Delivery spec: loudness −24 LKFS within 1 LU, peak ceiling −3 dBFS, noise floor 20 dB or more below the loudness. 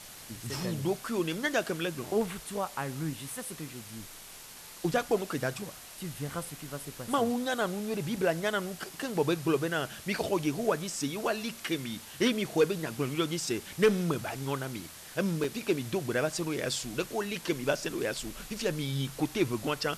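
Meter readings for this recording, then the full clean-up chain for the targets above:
number of dropouts 2; longest dropout 2.8 ms; background noise floor −48 dBFS; target noise floor −52 dBFS; integrated loudness −32.0 LKFS; sample peak −15.5 dBFS; target loudness −24.0 LKFS
→ repair the gap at 0:08.16/0:15.44, 2.8 ms
broadband denoise 6 dB, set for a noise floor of −48 dBFS
level +8 dB

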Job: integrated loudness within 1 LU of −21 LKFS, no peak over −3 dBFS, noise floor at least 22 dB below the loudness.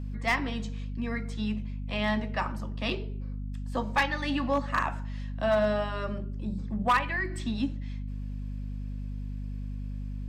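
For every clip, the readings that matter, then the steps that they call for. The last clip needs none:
share of clipped samples 0.3%; peaks flattened at −18.0 dBFS; mains hum 50 Hz; hum harmonics up to 250 Hz; level of the hum −33 dBFS; integrated loudness −31.5 LKFS; sample peak −18.0 dBFS; target loudness −21.0 LKFS
→ clipped peaks rebuilt −18 dBFS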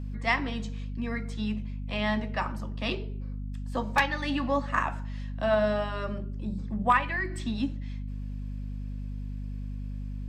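share of clipped samples 0.0%; mains hum 50 Hz; hum harmonics up to 450 Hz; level of the hum −32 dBFS
→ hum removal 50 Hz, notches 9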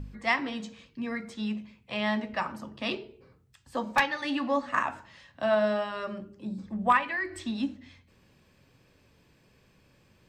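mains hum none found; integrated loudness −30.5 LKFS; sample peak −8.5 dBFS; target loudness −21.0 LKFS
→ level +9.5 dB
brickwall limiter −3 dBFS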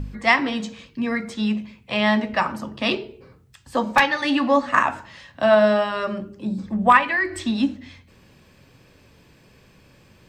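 integrated loudness −21.0 LKFS; sample peak −3.0 dBFS; background noise floor −54 dBFS

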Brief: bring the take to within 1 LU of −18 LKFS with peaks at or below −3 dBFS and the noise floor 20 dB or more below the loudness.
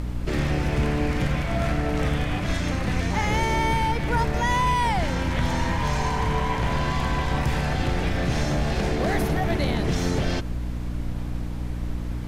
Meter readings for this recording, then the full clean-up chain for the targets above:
mains hum 60 Hz; hum harmonics up to 300 Hz; level of the hum −27 dBFS; background noise floor −29 dBFS; target noise floor −45 dBFS; integrated loudness −25.0 LKFS; sample peak −11.0 dBFS; target loudness −18.0 LKFS
→ hum removal 60 Hz, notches 5
noise reduction from a noise print 16 dB
level +7 dB

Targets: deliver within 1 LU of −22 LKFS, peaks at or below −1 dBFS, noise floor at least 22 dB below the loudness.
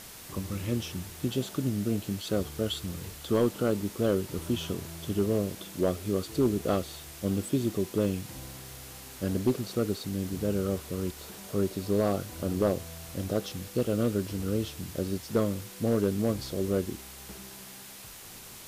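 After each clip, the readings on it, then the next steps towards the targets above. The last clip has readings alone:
share of clipped samples 0.3%; peaks flattened at −17.0 dBFS; background noise floor −46 dBFS; target noise floor −53 dBFS; integrated loudness −30.5 LKFS; sample peak −17.0 dBFS; target loudness −22.0 LKFS
→ clipped peaks rebuilt −17 dBFS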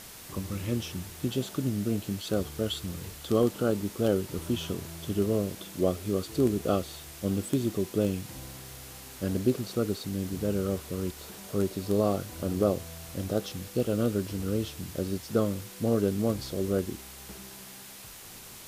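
share of clipped samples 0.0%; background noise floor −46 dBFS; target noise floor −53 dBFS
→ broadband denoise 7 dB, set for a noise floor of −46 dBFS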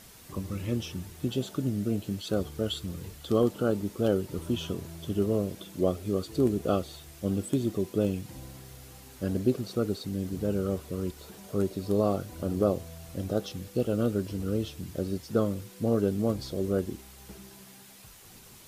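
background noise floor −51 dBFS; target noise floor −53 dBFS
→ broadband denoise 6 dB, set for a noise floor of −51 dBFS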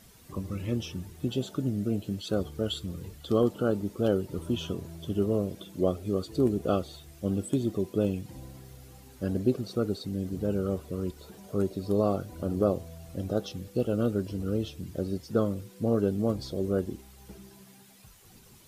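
background noise floor −54 dBFS; integrated loudness −30.5 LKFS; sample peak −12.0 dBFS; target loudness −22.0 LKFS
→ level +8.5 dB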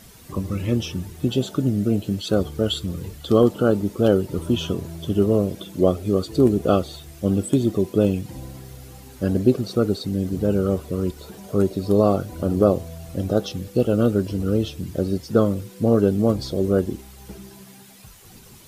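integrated loudness −22.0 LKFS; sample peak −3.5 dBFS; background noise floor −46 dBFS

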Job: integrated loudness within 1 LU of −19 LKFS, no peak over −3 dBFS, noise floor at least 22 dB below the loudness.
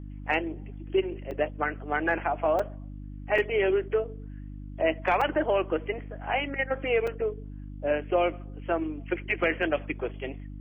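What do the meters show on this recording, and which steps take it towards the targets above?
number of dropouts 5; longest dropout 4.4 ms; mains hum 50 Hz; hum harmonics up to 300 Hz; level of the hum −37 dBFS; integrated loudness −28.5 LKFS; sample peak −13.0 dBFS; target loudness −19.0 LKFS
→ repair the gap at 0:01.31/0:02.59/0:03.38/0:05.21/0:07.07, 4.4 ms
hum removal 50 Hz, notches 6
level +9.5 dB

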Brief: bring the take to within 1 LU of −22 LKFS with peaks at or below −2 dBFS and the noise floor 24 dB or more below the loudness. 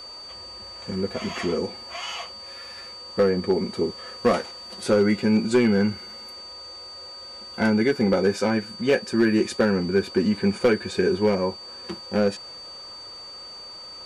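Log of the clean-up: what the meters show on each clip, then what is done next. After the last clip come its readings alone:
share of clipped samples 0.5%; peaks flattened at −12.0 dBFS; interfering tone 4,600 Hz; level of the tone −38 dBFS; integrated loudness −23.5 LKFS; sample peak −12.0 dBFS; target loudness −22.0 LKFS
→ clipped peaks rebuilt −12 dBFS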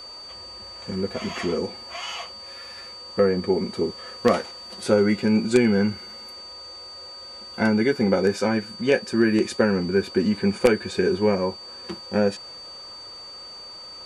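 share of clipped samples 0.0%; interfering tone 4,600 Hz; level of the tone −38 dBFS
→ notch filter 4,600 Hz, Q 30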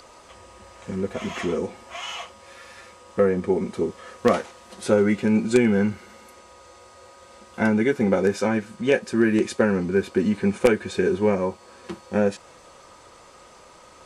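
interfering tone none found; integrated loudness −23.0 LKFS; sample peak −3.5 dBFS; target loudness −22.0 LKFS
→ level +1 dB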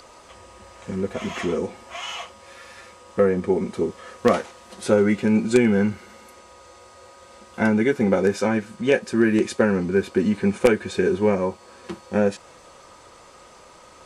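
integrated loudness −22.0 LKFS; sample peak −2.5 dBFS; background noise floor −48 dBFS

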